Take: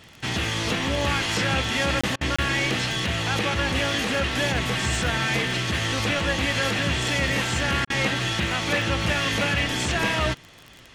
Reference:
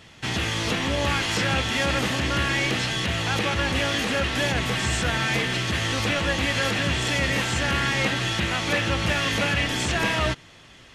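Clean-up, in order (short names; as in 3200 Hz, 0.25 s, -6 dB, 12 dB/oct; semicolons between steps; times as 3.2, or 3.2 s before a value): de-click; interpolate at 2.01/2.36/7.85, 25 ms; interpolate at 2.16/7.85, 49 ms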